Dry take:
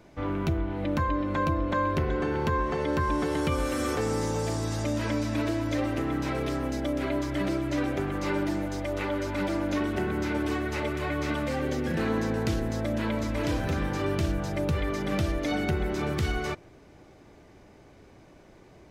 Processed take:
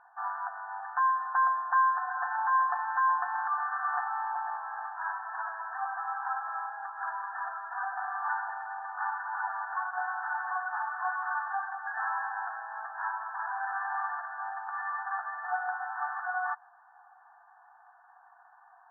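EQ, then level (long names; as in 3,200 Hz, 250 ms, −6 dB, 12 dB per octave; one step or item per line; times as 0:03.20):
linear-phase brick-wall band-pass 690–1,800 Hz
high-frequency loss of the air 340 metres
+7.0 dB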